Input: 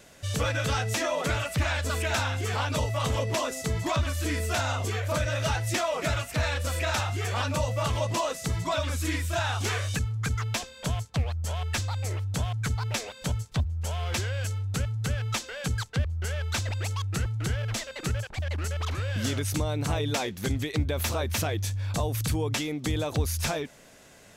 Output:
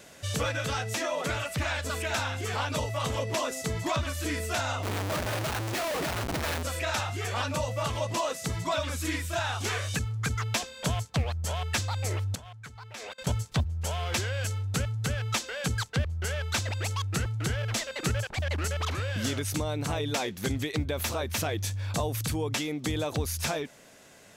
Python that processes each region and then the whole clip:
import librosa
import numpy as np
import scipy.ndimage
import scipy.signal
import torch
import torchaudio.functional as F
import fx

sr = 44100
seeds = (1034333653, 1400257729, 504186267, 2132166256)

y = fx.chain(x, sr, fx.high_shelf(hz=12000.0, db=-11.5),
    fx.schmitt(flips_db=-35.5), at=(4.83, 6.63))
y = fx.chain(y, sr, fx.level_steps(step_db=24),
    fx.peak_eq(hz=1500.0, db=6.0, octaves=2.8), at=(12.35, 13.27))
y = fx.low_shelf(y, sr, hz=67.0, db=-11.0)
y = fx.rider(y, sr, range_db=10, speed_s=0.5)